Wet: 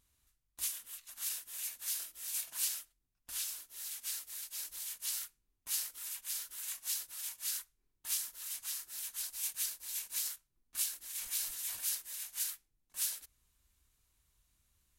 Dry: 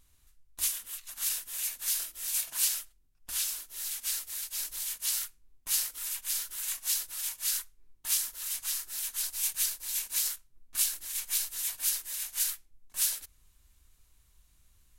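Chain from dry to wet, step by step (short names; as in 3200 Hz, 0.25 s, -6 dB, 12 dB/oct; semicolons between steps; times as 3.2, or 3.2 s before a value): HPF 60 Hz 6 dB/oct; 11.14–11.95 sustainer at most 55 dB/s; gain -7 dB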